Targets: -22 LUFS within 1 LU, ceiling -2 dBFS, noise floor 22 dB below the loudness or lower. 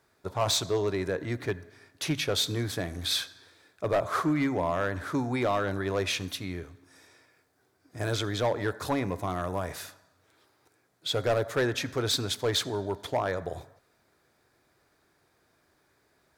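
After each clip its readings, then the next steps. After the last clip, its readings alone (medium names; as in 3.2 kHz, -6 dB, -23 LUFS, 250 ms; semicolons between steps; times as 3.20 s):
clipped samples 0.7%; clipping level -20.0 dBFS; loudness -30.0 LUFS; peak level -20.0 dBFS; loudness target -22.0 LUFS
-> clip repair -20 dBFS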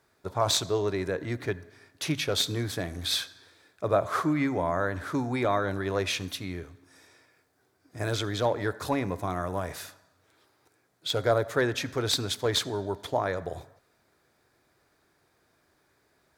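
clipped samples 0.0%; loudness -29.0 LUFS; peak level -11.0 dBFS; loudness target -22.0 LUFS
-> trim +7 dB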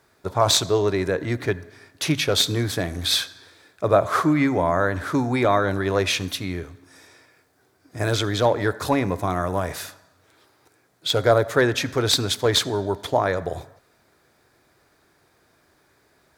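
loudness -22.0 LUFS; peak level -4.0 dBFS; noise floor -62 dBFS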